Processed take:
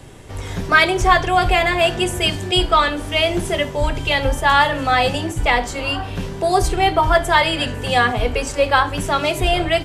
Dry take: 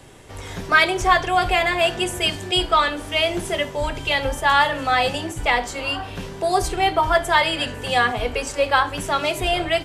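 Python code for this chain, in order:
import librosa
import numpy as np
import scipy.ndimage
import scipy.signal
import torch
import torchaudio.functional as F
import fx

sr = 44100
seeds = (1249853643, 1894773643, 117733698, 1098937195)

y = fx.low_shelf(x, sr, hz=270.0, db=6.5)
y = F.gain(torch.from_numpy(y), 2.0).numpy()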